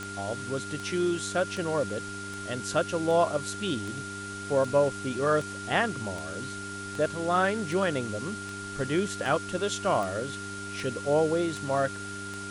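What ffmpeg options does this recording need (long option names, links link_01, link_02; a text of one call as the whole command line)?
ffmpeg -i in.wav -af "adeclick=threshold=4,bandreject=frequency=99.3:width_type=h:width=4,bandreject=frequency=198.6:width_type=h:width=4,bandreject=frequency=297.9:width_type=h:width=4,bandreject=frequency=397.2:width_type=h:width=4,bandreject=frequency=1400:width=30,afwtdn=0.0071" out.wav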